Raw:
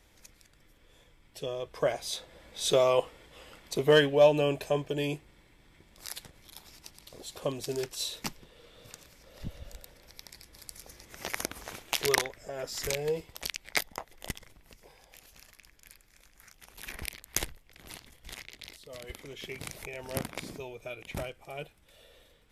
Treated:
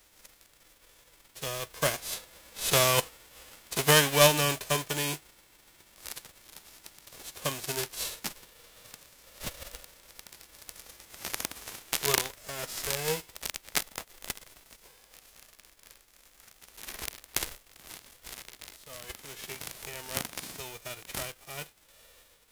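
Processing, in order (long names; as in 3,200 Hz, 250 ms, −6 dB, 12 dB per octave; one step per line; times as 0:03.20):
spectral envelope flattened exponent 0.3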